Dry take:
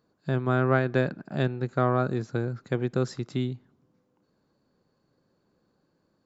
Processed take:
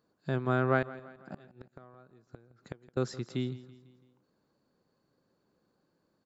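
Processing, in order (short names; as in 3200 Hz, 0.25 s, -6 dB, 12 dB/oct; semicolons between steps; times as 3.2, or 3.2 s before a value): low shelf 170 Hz -4.5 dB; 0.82–2.97 flipped gate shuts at -25 dBFS, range -27 dB; feedback echo 0.166 s, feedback 50%, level -18 dB; gain -3 dB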